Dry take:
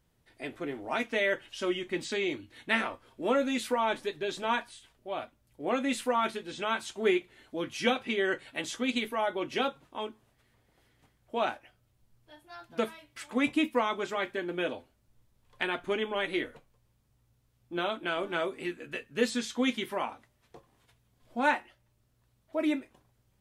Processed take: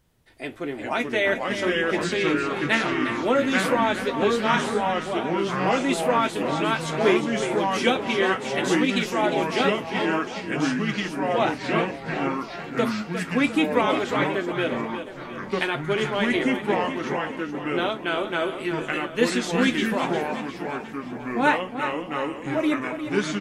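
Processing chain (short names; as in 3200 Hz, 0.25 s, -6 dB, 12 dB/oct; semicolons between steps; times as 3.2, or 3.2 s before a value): feedback echo 0.355 s, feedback 51%, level -9.5 dB; echoes that change speed 0.32 s, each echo -3 st, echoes 3; gain +5.5 dB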